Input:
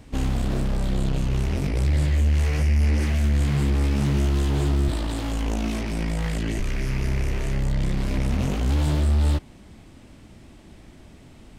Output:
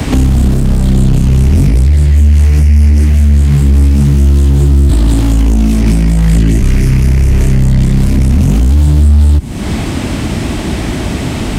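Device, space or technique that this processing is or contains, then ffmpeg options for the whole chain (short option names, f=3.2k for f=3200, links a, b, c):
mastering chain: -filter_complex "[0:a]highpass=40,equalizer=f=520:t=o:w=0.25:g=-3,acrossover=split=87|280|6700[a][b][c][d];[a]acompressor=threshold=-23dB:ratio=4[e];[b]acompressor=threshold=-27dB:ratio=4[f];[c]acompressor=threshold=-47dB:ratio=4[g];[d]acompressor=threshold=-50dB:ratio=4[h];[e][f][g][h]amix=inputs=4:normalize=0,acompressor=threshold=-40dB:ratio=1.5,asoftclip=type=tanh:threshold=-21.5dB,alimiter=level_in=33.5dB:limit=-1dB:release=50:level=0:latency=1,volume=-1dB"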